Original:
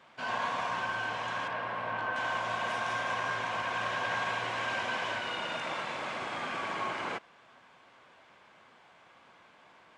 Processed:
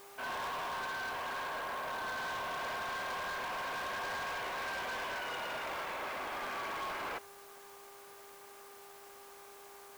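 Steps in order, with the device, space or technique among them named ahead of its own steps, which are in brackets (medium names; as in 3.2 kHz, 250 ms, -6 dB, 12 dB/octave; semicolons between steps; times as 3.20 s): aircraft radio (band-pass 320–2600 Hz; hard clipper -36.5 dBFS, distortion -8 dB; mains buzz 400 Hz, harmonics 3, -57 dBFS -4 dB/octave; white noise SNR 18 dB)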